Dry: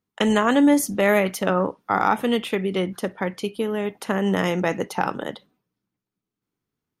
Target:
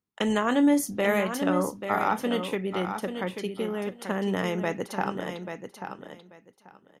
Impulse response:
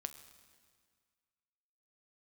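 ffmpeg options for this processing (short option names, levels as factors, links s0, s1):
-filter_complex "[0:a]asettb=1/sr,asplit=3[s0][s1][s2];[s0]atrim=end=0.464[s3];[s1]atrim=start=0.46:end=2.52,asetpts=PTS-STARTPTS,afade=t=in:d=0.004:c=qsin,afade=t=out:st=2.056:d=0.004:c=qsin,asplit=2[s4][s5];[s5]adelay=28,volume=0.237[s6];[s4][s6]amix=inputs=2:normalize=0,atrim=end_sample=90846[s7];[s2]atrim=start=2.516[s8];[s3][s7]acrossfade=d=0.004:c1=hsin:c2=qsin[s9];[s9][s8]acrossfade=d=0.004:c1=qsin:c2=hsin,aecho=1:1:837|1674|2511:0.398|0.0717|0.0129,volume=0.501"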